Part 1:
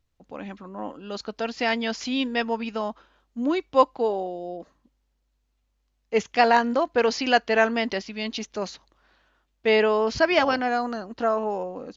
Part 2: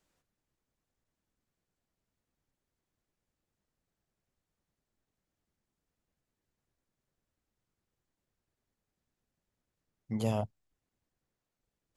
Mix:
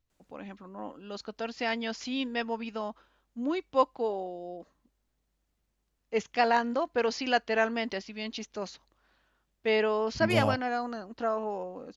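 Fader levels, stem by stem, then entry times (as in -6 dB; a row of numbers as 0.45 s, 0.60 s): -6.5 dB, +2.5 dB; 0.00 s, 0.10 s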